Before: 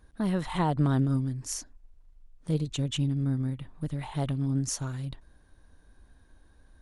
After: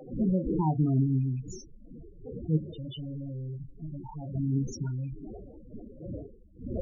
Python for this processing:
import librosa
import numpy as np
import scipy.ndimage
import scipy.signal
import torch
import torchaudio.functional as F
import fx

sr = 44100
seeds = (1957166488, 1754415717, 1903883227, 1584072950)

y = fx.rattle_buzz(x, sr, strikes_db=-39.0, level_db=-37.0)
y = fx.dmg_wind(y, sr, seeds[0], corner_hz=520.0, level_db=-37.0)
y = fx.room_early_taps(y, sr, ms=(32, 45), db=(-8.5, -16.0))
y = fx.overload_stage(y, sr, gain_db=35.0, at=(2.57, 4.34), fade=0.02)
y = fx.spec_topn(y, sr, count=8)